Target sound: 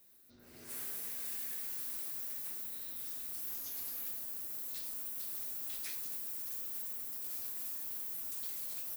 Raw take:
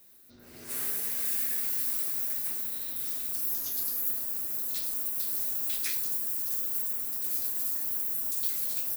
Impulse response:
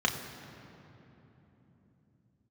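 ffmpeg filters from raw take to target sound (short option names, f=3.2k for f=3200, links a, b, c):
-af "asoftclip=type=tanh:threshold=-30dB,volume=-6.5dB"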